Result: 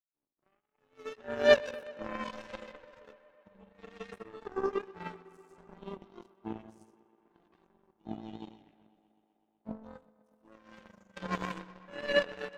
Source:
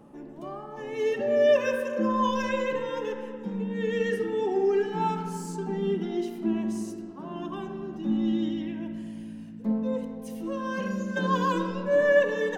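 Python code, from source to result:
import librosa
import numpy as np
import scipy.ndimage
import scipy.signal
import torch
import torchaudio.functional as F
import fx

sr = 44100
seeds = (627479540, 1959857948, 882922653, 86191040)

y = fx.chorus_voices(x, sr, voices=4, hz=0.87, base_ms=17, depth_ms=1.6, mix_pct=25)
y = fx.power_curve(y, sr, exponent=3.0)
y = fx.echo_tape(y, sr, ms=125, feedback_pct=86, wet_db=-20.5, lp_hz=6000.0, drive_db=12.0, wow_cents=8)
y = y * 10.0 ** (6.5 / 20.0)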